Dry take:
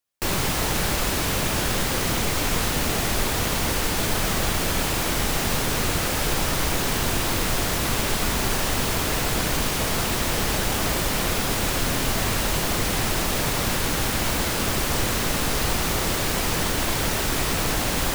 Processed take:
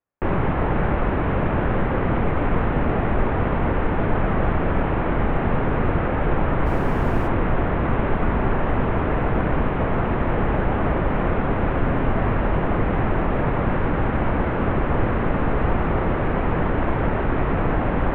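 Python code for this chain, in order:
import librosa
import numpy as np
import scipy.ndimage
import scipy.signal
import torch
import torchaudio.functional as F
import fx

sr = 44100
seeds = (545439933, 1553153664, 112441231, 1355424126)

y = scipy.ndimage.gaussian_filter1d(x, 5.0, mode='constant')
y = fx.dmg_noise_colour(y, sr, seeds[0], colour='brown', level_db=-37.0, at=(6.65, 7.27), fade=0.02)
y = F.gain(torch.from_numpy(y), 5.5).numpy()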